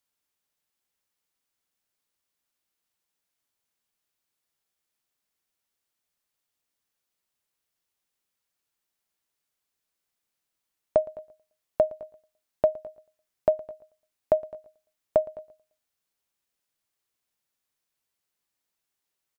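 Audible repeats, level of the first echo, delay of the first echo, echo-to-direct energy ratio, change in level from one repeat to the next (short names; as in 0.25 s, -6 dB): 2, -22.0 dB, 0.114 s, -21.0 dB, -7.0 dB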